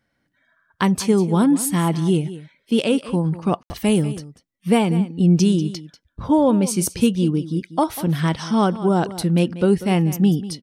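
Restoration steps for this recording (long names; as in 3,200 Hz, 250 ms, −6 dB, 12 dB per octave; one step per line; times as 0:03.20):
ambience match 0:03.63–0:03.70
echo removal 192 ms −15 dB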